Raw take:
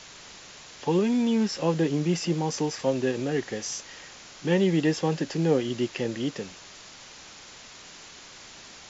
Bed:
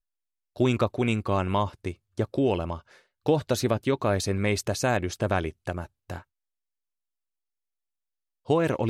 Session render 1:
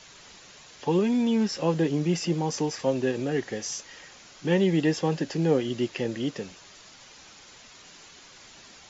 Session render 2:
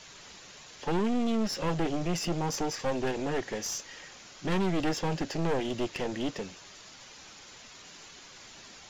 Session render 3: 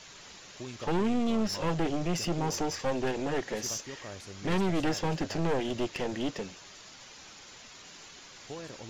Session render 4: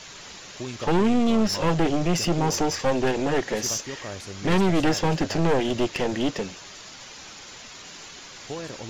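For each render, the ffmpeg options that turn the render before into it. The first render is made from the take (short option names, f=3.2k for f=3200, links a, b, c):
-af "afftdn=nr=6:nf=-47"
-af "asoftclip=type=tanh:threshold=-26dB,aeval=exprs='0.0501*(cos(1*acos(clip(val(0)/0.0501,-1,1)))-cos(1*PI/2))+0.0224*(cos(2*acos(clip(val(0)/0.0501,-1,1)))-cos(2*PI/2))+0.00631*(cos(4*acos(clip(val(0)/0.0501,-1,1)))-cos(4*PI/2))+0.000891*(cos(8*acos(clip(val(0)/0.0501,-1,1)))-cos(8*PI/2))':c=same"
-filter_complex "[1:a]volume=-19.5dB[a];[0:a][a]amix=inputs=2:normalize=0"
-af "volume=7.5dB"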